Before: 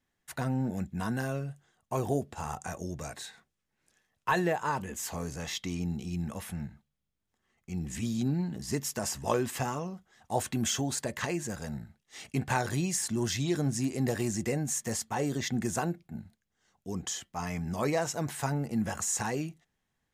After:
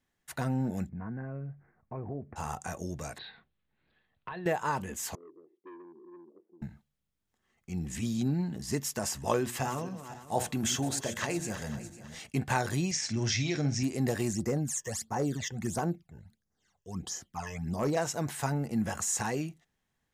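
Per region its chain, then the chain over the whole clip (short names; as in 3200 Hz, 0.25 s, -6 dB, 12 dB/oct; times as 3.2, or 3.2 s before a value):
0.89–2.36 steep low-pass 2400 Hz 96 dB/oct + low shelf 400 Hz +9 dB + compressor 2:1, threshold -46 dBFS
3.18–4.46 steep low-pass 4300 Hz 72 dB/oct + low shelf 150 Hz +6 dB + compressor 5:1, threshold -38 dBFS
5.15–6.62 Butterworth band-pass 360 Hz, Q 4.4 + core saturation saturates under 820 Hz
9.39–12.19 regenerating reverse delay 0.251 s, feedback 52%, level -11.5 dB + notches 60/120/180/240/300/360/420/480/540/600 Hz
12.91–13.83 speaker cabinet 110–6200 Hz, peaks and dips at 110 Hz +9 dB, 190 Hz -5 dB, 370 Hz -5 dB, 1000 Hz -7 dB, 2300 Hz +9 dB, 5600 Hz +8 dB + doubler 48 ms -10.5 dB
14.33–17.97 phaser stages 12, 1.5 Hz, lowest notch 220–3400 Hz + hard clip -23 dBFS
whole clip: dry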